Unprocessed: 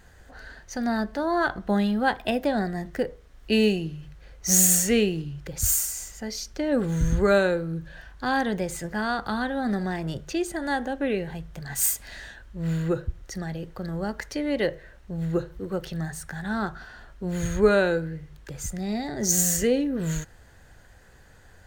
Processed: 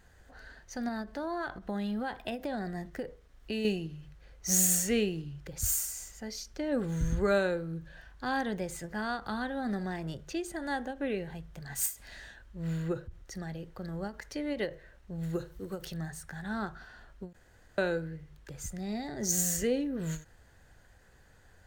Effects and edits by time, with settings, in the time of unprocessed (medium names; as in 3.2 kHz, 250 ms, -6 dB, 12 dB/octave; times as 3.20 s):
0.88–3.65 s: compression, threshold -23 dBFS
15.23–15.94 s: treble shelf 5.1 kHz +11.5 dB
17.33–17.78 s: room tone
whole clip: endings held to a fixed fall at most 210 dB/s; trim -7 dB